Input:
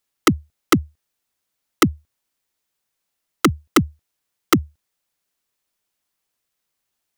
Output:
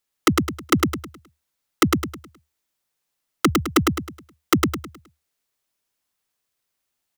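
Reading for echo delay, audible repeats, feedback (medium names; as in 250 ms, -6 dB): 105 ms, 4, 36%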